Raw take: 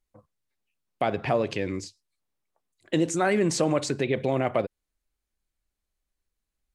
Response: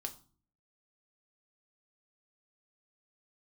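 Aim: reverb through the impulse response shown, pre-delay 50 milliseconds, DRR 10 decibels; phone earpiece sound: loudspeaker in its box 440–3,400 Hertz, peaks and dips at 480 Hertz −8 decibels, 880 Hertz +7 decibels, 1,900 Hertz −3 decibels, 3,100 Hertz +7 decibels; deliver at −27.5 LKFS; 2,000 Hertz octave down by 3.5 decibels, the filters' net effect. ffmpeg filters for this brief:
-filter_complex "[0:a]equalizer=frequency=2000:width_type=o:gain=-4,asplit=2[link_01][link_02];[1:a]atrim=start_sample=2205,adelay=50[link_03];[link_02][link_03]afir=irnorm=-1:irlink=0,volume=-8.5dB[link_04];[link_01][link_04]amix=inputs=2:normalize=0,highpass=440,equalizer=frequency=480:width_type=q:width=4:gain=-8,equalizer=frequency=880:width_type=q:width=4:gain=7,equalizer=frequency=1900:width_type=q:width=4:gain=-3,equalizer=frequency=3100:width_type=q:width=4:gain=7,lowpass=frequency=3400:width=0.5412,lowpass=frequency=3400:width=1.3066,volume=3dB"

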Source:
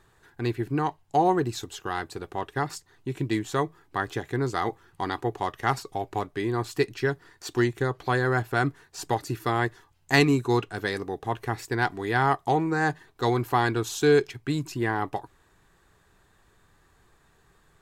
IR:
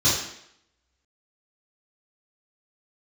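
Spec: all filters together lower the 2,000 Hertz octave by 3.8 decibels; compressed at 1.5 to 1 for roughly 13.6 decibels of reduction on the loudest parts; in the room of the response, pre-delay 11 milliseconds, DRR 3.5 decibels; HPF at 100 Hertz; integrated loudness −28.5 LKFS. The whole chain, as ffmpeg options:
-filter_complex "[0:a]highpass=100,equalizer=frequency=2000:width_type=o:gain=-5,acompressor=threshold=-55dB:ratio=1.5,asplit=2[link_01][link_02];[1:a]atrim=start_sample=2205,adelay=11[link_03];[link_02][link_03]afir=irnorm=-1:irlink=0,volume=-19dB[link_04];[link_01][link_04]amix=inputs=2:normalize=0,volume=8dB"

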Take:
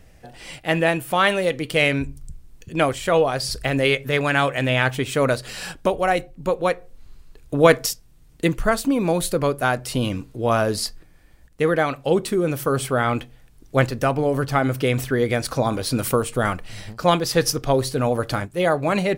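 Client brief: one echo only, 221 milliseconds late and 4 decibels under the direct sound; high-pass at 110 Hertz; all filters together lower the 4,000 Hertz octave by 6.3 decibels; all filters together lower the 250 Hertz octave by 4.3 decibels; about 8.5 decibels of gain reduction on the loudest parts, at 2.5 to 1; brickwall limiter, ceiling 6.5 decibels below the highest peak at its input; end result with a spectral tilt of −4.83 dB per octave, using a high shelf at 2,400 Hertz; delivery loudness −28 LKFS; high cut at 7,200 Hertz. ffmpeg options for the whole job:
ffmpeg -i in.wav -af "highpass=110,lowpass=7200,equalizer=frequency=250:width_type=o:gain=-5.5,highshelf=frequency=2400:gain=-4,equalizer=frequency=4000:width_type=o:gain=-4.5,acompressor=threshold=-22dB:ratio=2.5,alimiter=limit=-15.5dB:level=0:latency=1,aecho=1:1:221:0.631,volume=-0.5dB" out.wav

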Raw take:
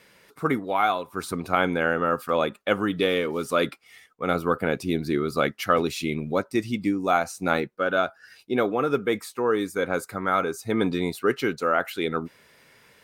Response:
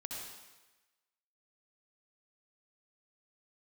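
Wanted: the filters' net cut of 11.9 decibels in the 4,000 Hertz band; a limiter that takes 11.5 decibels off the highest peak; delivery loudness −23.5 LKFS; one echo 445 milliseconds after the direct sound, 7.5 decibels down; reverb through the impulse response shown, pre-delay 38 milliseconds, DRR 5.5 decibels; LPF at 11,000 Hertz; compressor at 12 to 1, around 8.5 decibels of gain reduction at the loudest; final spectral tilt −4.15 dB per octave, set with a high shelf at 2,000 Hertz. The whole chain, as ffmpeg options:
-filter_complex "[0:a]lowpass=11000,highshelf=frequency=2000:gain=-9,equalizer=frequency=4000:width_type=o:gain=-6.5,acompressor=threshold=-27dB:ratio=12,alimiter=level_in=1dB:limit=-24dB:level=0:latency=1,volume=-1dB,aecho=1:1:445:0.422,asplit=2[link_01][link_02];[1:a]atrim=start_sample=2205,adelay=38[link_03];[link_02][link_03]afir=irnorm=-1:irlink=0,volume=-4.5dB[link_04];[link_01][link_04]amix=inputs=2:normalize=0,volume=11.5dB"

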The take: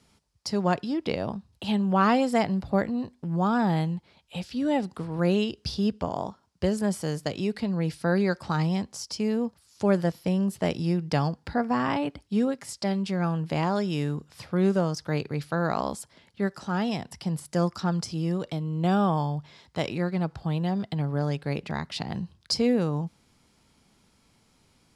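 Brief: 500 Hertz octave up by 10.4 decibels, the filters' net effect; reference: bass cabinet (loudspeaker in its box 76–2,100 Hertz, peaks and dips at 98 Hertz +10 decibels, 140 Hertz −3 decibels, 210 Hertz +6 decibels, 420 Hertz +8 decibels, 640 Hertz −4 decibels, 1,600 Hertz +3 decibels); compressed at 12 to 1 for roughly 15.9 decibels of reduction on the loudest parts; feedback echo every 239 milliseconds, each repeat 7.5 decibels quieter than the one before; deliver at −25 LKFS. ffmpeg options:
ffmpeg -i in.wav -af "equalizer=frequency=500:width_type=o:gain=8.5,acompressor=threshold=-30dB:ratio=12,highpass=frequency=76:width=0.5412,highpass=frequency=76:width=1.3066,equalizer=frequency=98:width_type=q:width=4:gain=10,equalizer=frequency=140:width_type=q:width=4:gain=-3,equalizer=frequency=210:width_type=q:width=4:gain=6,equalizer=frequency=420:width_type=q:width=4:gain=8,equalizer=frequency=640:width_type=q:width=4:gain=-4,equalizer=frequency=1600:width_type=q:width=4:gain=3,lowpass=frequency=2100:width=0.5412,lowpass=frequency=2100:width=1.3066,aecho=1:1:239|478|717|956|1195:0.422|0.177|0.0744|0.0312|0.0131,volume=7dB" out.wav

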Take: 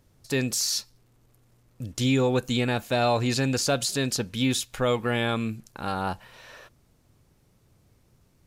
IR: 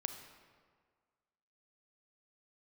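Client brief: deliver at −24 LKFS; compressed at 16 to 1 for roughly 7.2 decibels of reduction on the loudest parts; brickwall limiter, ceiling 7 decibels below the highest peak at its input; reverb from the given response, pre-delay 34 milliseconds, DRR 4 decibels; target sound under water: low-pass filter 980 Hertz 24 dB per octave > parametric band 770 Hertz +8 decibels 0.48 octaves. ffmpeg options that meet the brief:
-filter_complex "[0:a]acompressor=threshold=-26dB:ratio=16,alimiter=level_in=1dB:limit=-24dB:level=0:latency=1,volume=-1dB,asplit=2[link_01][link_02];[1:a]atrim=start_sample=2205,adelay=34[link_03];[link_02][link_03]afir=irnorm=-1:irlink=0,volume=-3.5dB[link_04];[link_01][link_04]amix=inputs=2:normalize=0,lowpass=frequency=980:width=0.5412,lowpass=frequency=980:width=1.3066,equalizer=frequency=770:width_type=o:width=0.48:gain=8,volume=10dB"

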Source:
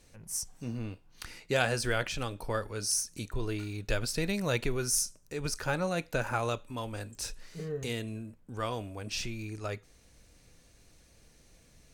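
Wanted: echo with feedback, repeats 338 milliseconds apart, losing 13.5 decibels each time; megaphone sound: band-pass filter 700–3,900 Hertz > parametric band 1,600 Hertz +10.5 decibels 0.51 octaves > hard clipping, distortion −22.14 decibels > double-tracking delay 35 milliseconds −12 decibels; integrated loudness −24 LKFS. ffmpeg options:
ffmpeg -i in.wav -filter_complex "[0:a]highpass=700,lowpass=3900,equalizer=frequency=1600:width_type=o:width=0.51:gain=10.5,aecho=1:1:338|676:0.211|0.0444,asoftclip=type=hard:threshold=-16.5dB,asplit=2[link_01][link_02];[link_02]adelay=35,volume=-12dB[link_03];[link_01][link_03]amix=inputs=2:normalize=0,volume=9dB" out.wav

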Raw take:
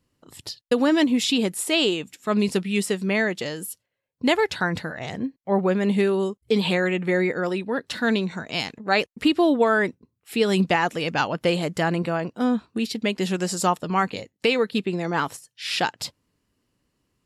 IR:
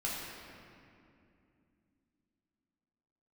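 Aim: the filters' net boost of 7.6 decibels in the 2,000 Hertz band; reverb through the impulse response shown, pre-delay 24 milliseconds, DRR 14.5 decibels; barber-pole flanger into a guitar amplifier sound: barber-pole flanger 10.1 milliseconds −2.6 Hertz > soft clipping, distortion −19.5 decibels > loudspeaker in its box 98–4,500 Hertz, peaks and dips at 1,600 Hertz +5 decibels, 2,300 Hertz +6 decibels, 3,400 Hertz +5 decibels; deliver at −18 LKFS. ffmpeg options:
-filter_complex "[0:a]equalizer=frequency=2000:width_type=o:gain=3.5,asplit=2[link_01][link_02];[1:a]atrim=start_sample=2205,adelay=24[link_03];[link_02][link_03]afir=irnorm=-1:irlink=0,volume=-19dB[link_04];[link_01][link_04]amix=inputs=2:normalize=0,asplit=2[link_05][link_06];[link_06]adelay=10.1,afreqshift=-2.6[link_07];[link_05][link_07]amix=inputs=2:normalize=1,asoftclip=threshold=-14dB,highpass=98,equalizer=frequency=1600:width_type=q:width=4:gain=5,equalizer=frequency=2300:width_type=q:width=4:gain=6,equalizer=frequency=3400:width_type=q:width=4:gain=5,lowpass=frequency=4500:width=0.5412,lowpass=frequency=4500:width=1.3066,volume=6.5dB"

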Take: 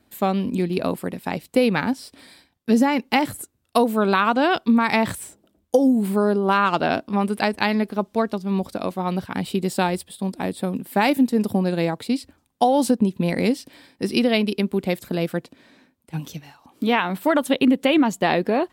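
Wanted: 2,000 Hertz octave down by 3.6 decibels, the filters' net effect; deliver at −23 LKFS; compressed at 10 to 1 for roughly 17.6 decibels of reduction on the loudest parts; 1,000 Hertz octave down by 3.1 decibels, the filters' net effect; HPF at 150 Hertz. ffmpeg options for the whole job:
ffmpeg -i in.wav -af "highpass=150,equalizer=frequency=1000:width_type=o:gain=-3.5,equalizer=frequency=2000:width_type=o:gain=-3.5,acompressor=threshold=-32dB:ratio=10,volume=14dB" out.wav

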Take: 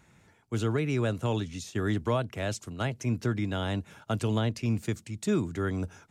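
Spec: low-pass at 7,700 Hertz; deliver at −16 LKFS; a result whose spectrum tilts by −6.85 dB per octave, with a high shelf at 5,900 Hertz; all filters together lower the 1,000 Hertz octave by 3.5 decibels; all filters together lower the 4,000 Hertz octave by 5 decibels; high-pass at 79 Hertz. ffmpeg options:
ffmpeg -i in.wav -af "highpass=79,lowpass=7700,equalizer=frequency=1000:width_type=o:gain=-4.5,equalizer=frequency=4000:width_type=o:gain=-9,highshelf=frequency=5900:gain=8,volume=15.5dB" out.wav

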